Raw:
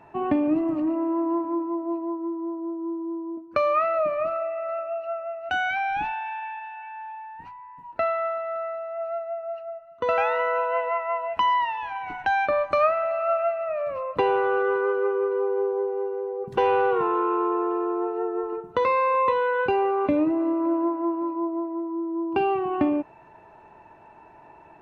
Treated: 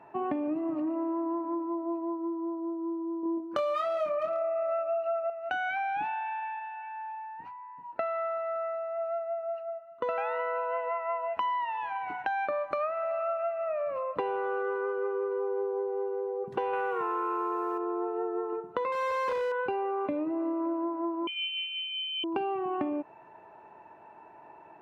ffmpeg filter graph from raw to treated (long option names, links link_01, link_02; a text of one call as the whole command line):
ffmpeg -i in.wav -filter_complex "[0:a]asettb=1/sr,asplit=3[link_01][link_02][link_03];[link_01]atrim=end=3.234[link_04];[link_02]atrim=start=3.23:end=5.3,asetpts=PTS-STARTPTS,afade=type=in:duration=0.004:curve=qsin,afade=type=out:start_time=2.066:duration=0.004:curve=qsin,acontrast=36,asoftclip=type=hard:threshold=-15.5dB,asplit=2[link_05][link_06];[link_06]adelay=24,volume=-3dB[link_07];[link_05][link_07]amix=inputs=2:normalize=0,atrim=end_sample=91287[link_08];[link_03]atrim=start=5.296[link_09];[link_04][link_08]acrossfade=duration=0.004:curve1=hsin:curve2=qsin[link_10];[link_10][link_09]acrossfade=duration=0.004:curve1=qsin:curve2=hsin,asettb=1/sr,asplit=3[link_11][link_12][link_13];[link_11]atrim=end=16.734[link_14];[link_12]atrim=start=16.73:end=17.78,asetpts=PTS-STARTPTS,afade=type=in:duration=0.004:curve=qsin,afade=type=out:start_time=1.046:duration=0.004:curve=qsin,equalizer=frequency=2000:width_type=o:width=1.8:gain=8.5,acrusher=bits=9:dc=4:mix=0:aa=0.000001[link_15];[link_13]atrim=start=17.776[link_16];[link_14][link_15]acrossfade=duration=0.004:curve1=hsin:curve2=qsin[link_17];[link_17][link_16]acrossfade=duration=0.004:curve1=qsin:curve2=hsin,asettb=1/sr,asplit=3[link_18][link_19][link_20];[link_18]atrim=end=18.924[link_21];[link_19]atrim=start=18.92:end=19.52,asetpts=PTS-STARTPTS,afade=type=in:duration=0.004:curve=qsin,afade=type=out:start_time=0.596:duration=0.004:curve=qsin,equalizer=frequency=1700:width=0.94:gain=-11,volume=26.5dB,asoftclip=hard,volume=-26.5dB,asplit=2[link_22][link_23];[link_23]highpass=frequency=720:poles=1,volume=38dB,asoftclip=type=tanh:threshold=-16.5dB[link_24];[link_22][link_24]amix=inputs=2:normalize=0,lowpass=frequency=1900:poles=1,volume=-6dB[link_25];[link_20]atrim=start=19.516[link_26];[link_21][link_25]acrossfade=duration=0.004:curve1=hsin:curve2=qsin[link_27];[link_27][link_26]acrossfade=duration=0.004:curve1=qsin:curve2=hsin,asettb=1/sr,asplit=3[link_28][link_29][link_30];[link_28]atrim=end=21.274[link_31];[link_29]atrim=start=21.27:end=22.24,asetpts=PTS-STARTPTS,afade=type=in:duration=0.004:curve=qsin,afade=type=out:start_time=0.966:duration=0.004:curve=qsin,aeval=exprs='val(0)+0.00708*sin(2*PI*920*n/s)':channel_layout=same,lowpass=frequency=2900:width_type=q:width=0.5098,lowpass=frequency=2900:width_type=q:width=0.6013,lowpass=frequency=2900:width_type=q:width=0.9,lowpass=frequency=2900:width_type=q:width=2.563,afreqshift=-3400[link_32];[link_30]atrim=start=22.236[link_33];[link_31][link_32]acrossfade=duration=0.004:curve1=hsin:curve2=qsin[link_34];[link_34][link_33]acrossfade=duration=0.004:curve1=qsin:curve2=hsin,highpass=frequency=320:poles=1,highshelf=frequency=2900:gain=-11.5,acompressor=threshold=-28dB:ratio=6" out.wav